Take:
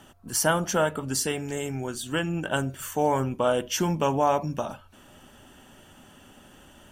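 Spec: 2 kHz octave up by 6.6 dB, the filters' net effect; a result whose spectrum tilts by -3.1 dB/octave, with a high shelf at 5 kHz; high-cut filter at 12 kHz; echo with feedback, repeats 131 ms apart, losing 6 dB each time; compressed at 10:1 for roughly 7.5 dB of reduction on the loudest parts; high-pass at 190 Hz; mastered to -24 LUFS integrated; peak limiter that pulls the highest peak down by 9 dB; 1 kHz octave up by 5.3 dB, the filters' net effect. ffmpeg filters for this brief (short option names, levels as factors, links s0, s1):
-af "highpass=190,lowpass=12000,equalizer=f=1000:t=o:g=5,equalizer=f=2000:t=o:g=6.5,highshelf=f=5000:g=5.5,acompressor=threshold=0.0891:ratio=10,alimiter=limit=0.106:level=0:latency=1,aecho=1:1:131|262|393|524|655|786:0.501|0.251|0.125|0.0626|0.0313|0.0157,volume=1.78"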